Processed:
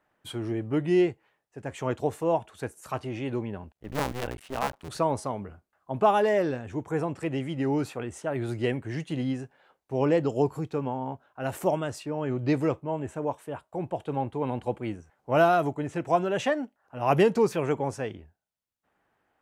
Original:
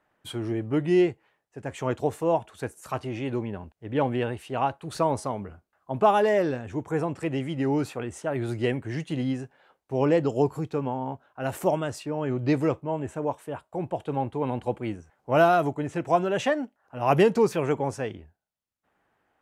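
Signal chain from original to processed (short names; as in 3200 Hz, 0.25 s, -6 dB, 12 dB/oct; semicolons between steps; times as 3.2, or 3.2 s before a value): 3.73–4.89 cycle switcher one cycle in 2, muted; gain -1.5 dB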